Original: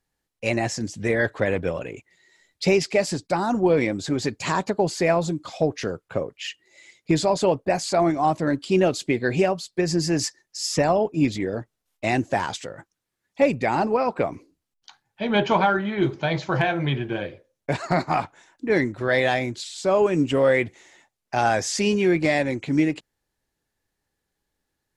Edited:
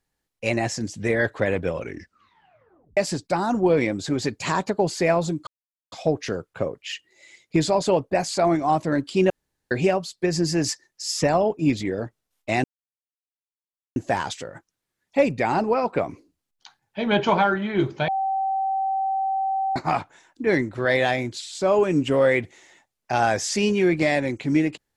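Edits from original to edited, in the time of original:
0:01.72: tape stop 1.25 s
0:05.47: splice in silence 0.45 s
0:08.85–0:09.26: fill with room tone
0:12.19: splice in silence 1.32 s
0:16.31–0:17.99: beep over 773 Hz −21 dBFS

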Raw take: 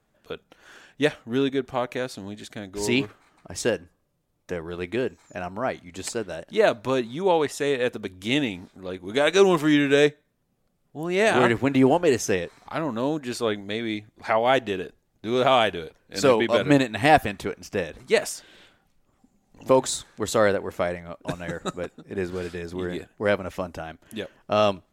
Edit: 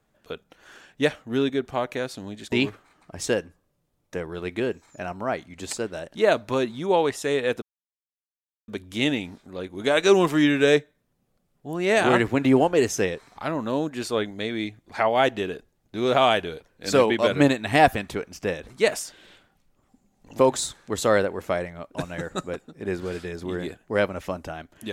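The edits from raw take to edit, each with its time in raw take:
0:02.52–0:02.88: remove
0:07.98: splice in silence 1.06 s

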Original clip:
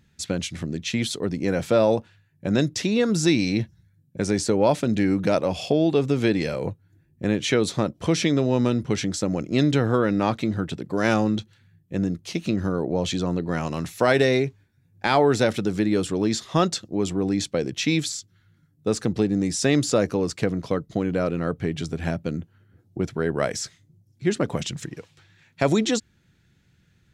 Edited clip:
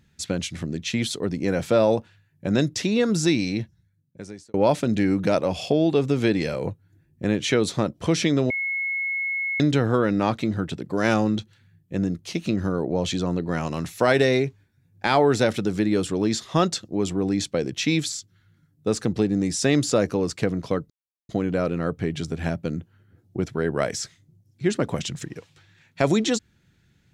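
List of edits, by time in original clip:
0:03.13–0:04.54: fade out
0:08.50–0:09.60: beep over 2,180 Hz −23.5 dBFS
0:20.90: splice in silence 0.39 s

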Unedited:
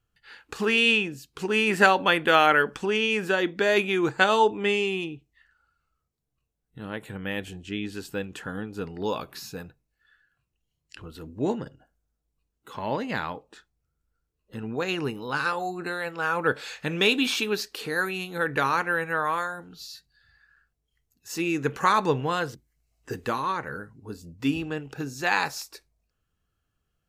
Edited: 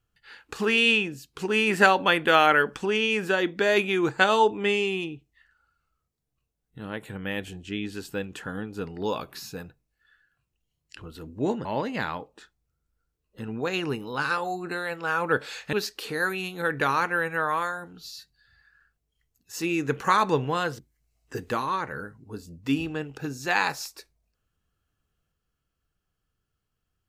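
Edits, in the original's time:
0:11.65–0:12.80: remove
0:16.88–0:17.49: remove

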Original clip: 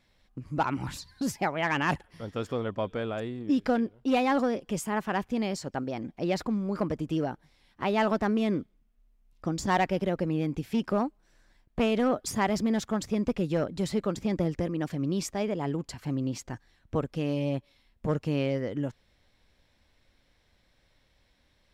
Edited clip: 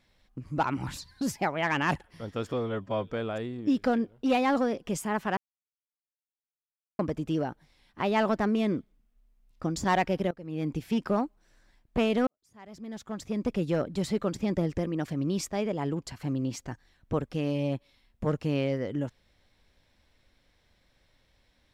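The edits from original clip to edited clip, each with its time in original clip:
0:02.53–0:02.89: time-stretch 1.5×
0:05.19–0:06.81: silence
0:10.13–0:10.48: fade in quadratic, from −18.5 dB
0:12.09–0:13.40: fade in quadratic

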